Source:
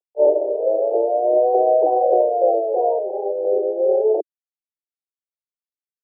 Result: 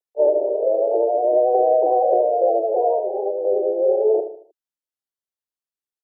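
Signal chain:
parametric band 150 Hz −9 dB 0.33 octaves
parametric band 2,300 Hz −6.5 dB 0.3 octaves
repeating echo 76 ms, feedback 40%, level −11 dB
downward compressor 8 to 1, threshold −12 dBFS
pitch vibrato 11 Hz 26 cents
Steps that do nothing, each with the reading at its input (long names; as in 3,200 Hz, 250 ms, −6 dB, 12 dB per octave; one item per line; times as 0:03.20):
parametric band 150 Hz: nothing at its input below 300 Hz
parametric band 2,300 Hz: nothing at its input above 960 Hz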